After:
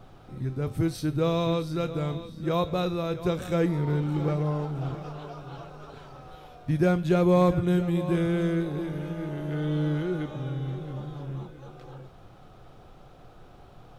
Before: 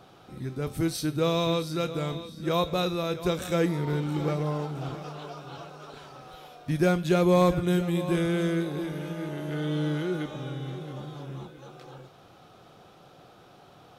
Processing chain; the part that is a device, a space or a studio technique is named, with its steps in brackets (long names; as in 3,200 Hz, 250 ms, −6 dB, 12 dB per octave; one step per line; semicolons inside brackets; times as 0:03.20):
car interior (parametric band 110 Hz +7.5 dB 0.68 octaves; high-shelf EQ 2,600 Hz −8 dB; brown noise bed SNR 24 dB)